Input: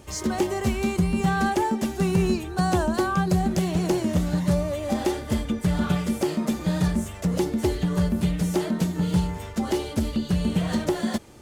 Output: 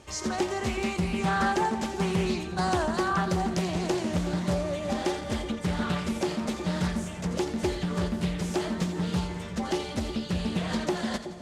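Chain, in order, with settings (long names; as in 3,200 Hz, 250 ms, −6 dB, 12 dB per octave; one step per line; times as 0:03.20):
low-pass filter 7,800 Hz 12 dB per octave
low-shelf EQ 470 Hz −7 dB
echo with a time of its own for lows and highs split 830 Hz, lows 371 ms, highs 85 ms, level −11 dB
highs frequency-modulated by the lows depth 0.29 ms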